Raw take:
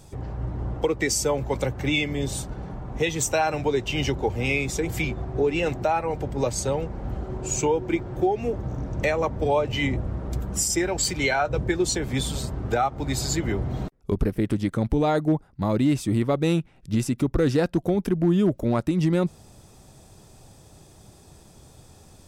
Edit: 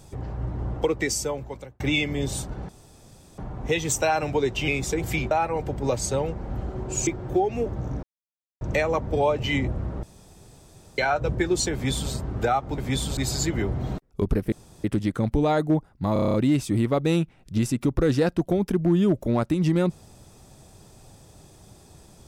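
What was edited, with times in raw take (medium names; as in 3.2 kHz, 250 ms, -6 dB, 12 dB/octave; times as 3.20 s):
0.91–1.80 s: fade out
2.69 s: insert room tone 0.69 s
3.99–4.54 s: delete
5.17–5.85 s: delete
7.61–7.94 s: delete
8.90 s: insert silence 0.58 s
10.32–11.27 s: room tone
12.02–12.41 s: copy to 13.07 s
14.42 s: insert room tone 0.32 s
15.71 s: stutter 0.03 s, 8 plays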